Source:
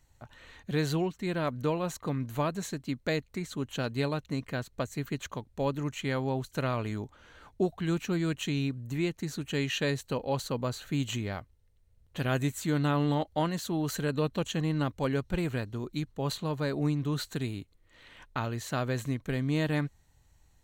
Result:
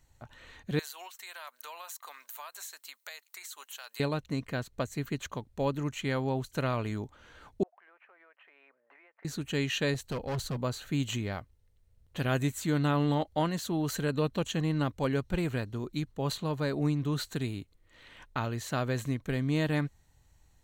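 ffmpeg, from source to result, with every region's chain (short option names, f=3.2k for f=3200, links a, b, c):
-filter_complex "[0:a]asettb=1/sr,asplit=3[a][b][c];[a]atrim=end=0.794[d];[b]atrim=start=0.79:end=4,asetpts=PTS-STARTPTS,afade=t=in:d=0.004:c=qsin,afade=t=out:st=3.206:d=0.004:c=qsin,highpass=f=810:w=0.5412,highpass=f=810:w=1.3066,aemphasis=mode=production:type=50fm,acompressor=threshold=-41dB:ratio=4:attack=3.2:release=140:knee=1:detection=peak[e];[c]atrim=start=3.996[f];[d][e]acrossfade=d=0.004:c1=hsin:c2=qsin[g];[g][f]acrossfade=d=0.004:c1=qsin:c2=hsin,asettb=1/sr,asplit=3[h][i][j];[h]atrim=end=7.634[k];[i]atrim=start=7.63:end=9.25,asetpts=PTS-STARTPTS,afade=t=in:d=0.004:c=qsin,afade=t=out:st=1.616:d=0.004:c=qsin,asuperpass=centerf=1100:order=8:qfactor=0.68,acompressor=threshold=-55dB:ratio=20:attack=3.2:release=140:knee=1:detection=peak[l];[j]atrim=start=9.246[m];[k][l]acrossfade=d=0.004:c1=hsin:c2=qsin[n];[n][m]acrossfade=d=0.004:c1=qsin:c2=hsin,asettb=1/sr,asplit=3[o][p][q];[o]atrim=end=9.944[r];[p]atrim=start=9.94:end=10.57,asetpts=PTS-STARTPTS,afade=t=in:d=0.004:c=qsin,afade=t=out:st=0.626:d=0.004:c=qsin,asubboost=boost=12:cutoff=220,asoftclip=type=hard:threshold=-30dB[s];[q]atrim=start=10.566[t];[r][s]acrossfade=d=0.004:c1=hsin:c2=qsin[u];[u][t]acrossfade=d=0.004:c1=qsin:c2=hsin"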